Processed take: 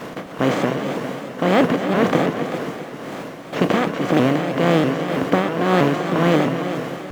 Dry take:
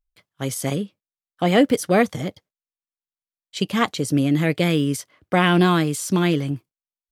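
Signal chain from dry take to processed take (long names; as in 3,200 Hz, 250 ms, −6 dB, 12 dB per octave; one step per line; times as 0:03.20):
compressor on every frequency bin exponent 0.2
Butterworth low-pass 7,100 Hz
high-shelf EQ 3,100 Hz −11.5 dB
in parallel at −7 dB: bit reduction 5 bits
on the sum: amplitude tremolo 1.9 Hz, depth 71%
on a send: echo machine with several playback heads 131 ms, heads all three, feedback 49%, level −13 dB
on the sum: pitch modulation by a square or saw wave saw up 3.1 Hz, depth 160 cents
level −6.5 dB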